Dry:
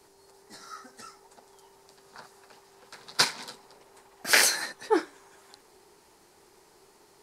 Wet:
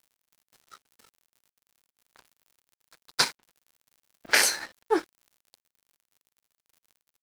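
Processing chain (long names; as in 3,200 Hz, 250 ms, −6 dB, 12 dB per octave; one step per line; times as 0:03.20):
0:03.32–0:04.90: low-pass that shuts in the quiet parts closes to 700 Hz, open at −18 dBFS
surface crackle 170 per second −41 dBFS
dead-zone distortion −41 dBFS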